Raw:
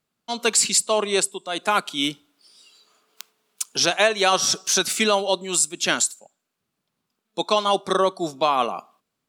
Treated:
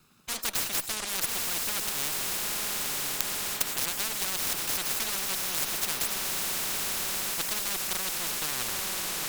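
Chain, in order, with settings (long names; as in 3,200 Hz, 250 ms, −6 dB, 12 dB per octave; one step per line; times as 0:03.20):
lower of the sound and its delayed copy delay 0.78 ms
transient designer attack +2 dB, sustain −2 dB
on a send: feedback delay with all-pass diffusion 902 ms, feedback 67%, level −10.5 dB
on the sum: every bin compressed towards the loudest bin 10 to 1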